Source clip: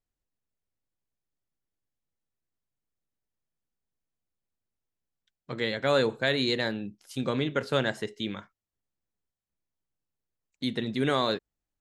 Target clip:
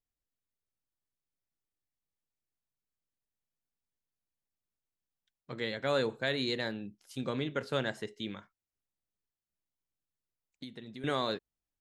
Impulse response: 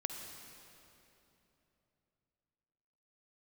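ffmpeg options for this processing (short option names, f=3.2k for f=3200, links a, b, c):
-filter_complex "[0:a]asettb=1/sr,asplit=3[a][b][c];[a]atrim=end=8.364[d];[b]atrim=start=8.36:end=11.04,asetpts=PTS-STARTPTS,afade=t=in:d=0.004:c=qsin,afade=t=out:st=2.676:d=0.004:c=qsin,acompressor=threshold=-36dB:ratio=16[e];[c]atrim=start=11.036[f];[d][e]acrossfade=d=0.004:c1=hsin:c2=qsin[g];[g][f]acrossfade=d=0.004:c1=qsin:c2=hsin,volume=-6dB"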